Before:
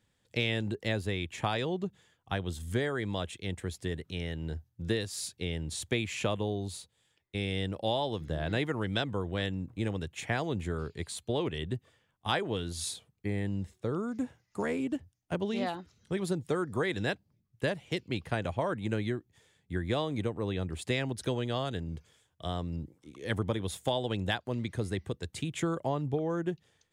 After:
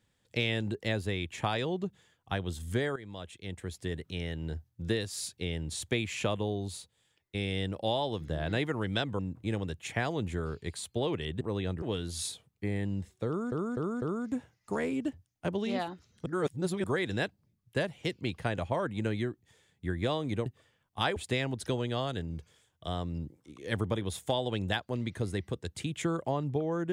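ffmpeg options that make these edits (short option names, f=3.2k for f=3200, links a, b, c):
-filter_complex "[0:a]asplit=12[a][b][c][d][e][f][g][h][i][j][k][l];[a]atrim=end=2.96,asetpts=PTS-STARTPTS,afade=t=out:st=2.956:d=0.004:c=hsin:silence=0.199526[m];[b]atrim=start=2.96:end=9.192,asetpts=PTS-STARTPTS,afade=t=in:d=1.04:silence=0.199526[n];[c]atrim=start=9.518:end=11.742[o];[d]atrim=start=20.328:end=20.742[p];[e]atrim=start=12.438:end=14.142[q];[f]atrim=start=13.888:end=14.142[r];[g]atrim=start=13.888:end=14.142[s];[h]atrim=start=13.888:end=16.132[t];[i]atrim=start=16.128:end=16.712,asetpts=PTS-STARTPTS,areverse[u];[j]atrim=start=16.708:end=20.332[v];[k]atrim=start=11.738:end=12.442[w];[l]atrim=start=20.738[x];[m][n]concat=n=2:v=0:a=1[y];[y][o]acrossfade=d=0.004:c1=hsin:c2=hsin[z];[z][p]acrossfade=d=0.004:c1=hsin:c2=hsin[aa];[aa][q]acrossfade=d=0.004:c1=hsin:c2=hsin[ab];[ab][r]acrossfade=d=0.004:c1=hsin:c2=hsin[ac];[ac][s]acrossfade=d=0.004:c1=hsin:c2=hsin[ad];[ad][t]acrossfade=d=0.004:c1=hsin:c2=hsin[ae];[ae][u]acrossfade=d=0.004:c1=hsin:c2=hsin[af];[af][v]acrossfade=d=0.004:c1=hsin:c2=hsin[ag];[ag][w]acrossfade=d=0.004:c1=hsin:c2=hsin[ah];[ah][x]acrossfade=d=0.004:c1=hsin:c2=hsin"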